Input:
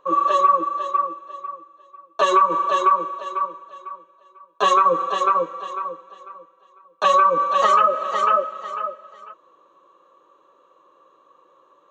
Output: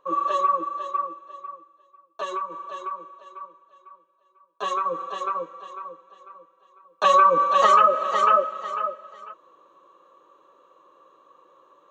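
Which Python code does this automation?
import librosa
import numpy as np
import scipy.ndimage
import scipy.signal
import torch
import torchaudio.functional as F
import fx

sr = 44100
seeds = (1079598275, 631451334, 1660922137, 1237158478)

y = fx.gain(x, sr, db=fx.line((1.54, -5.5), (2.53, -15.5), (3.46, -15.5), (4.98, -9.0), (5.85, -9.0), (7.23, 0.0)))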